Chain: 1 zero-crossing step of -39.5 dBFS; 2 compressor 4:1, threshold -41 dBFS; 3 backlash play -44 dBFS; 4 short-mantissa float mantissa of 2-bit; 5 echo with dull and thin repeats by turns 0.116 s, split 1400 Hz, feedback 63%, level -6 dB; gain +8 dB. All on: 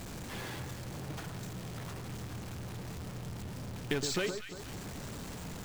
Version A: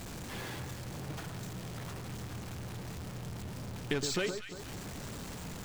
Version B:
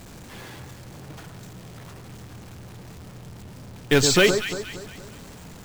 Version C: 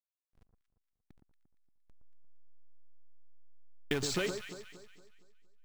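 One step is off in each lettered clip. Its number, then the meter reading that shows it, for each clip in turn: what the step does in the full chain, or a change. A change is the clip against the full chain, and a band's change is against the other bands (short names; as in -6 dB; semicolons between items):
4, distortion -19 dB; 2, momentary loudness spread change +13 LU; 1, distortion -9 dB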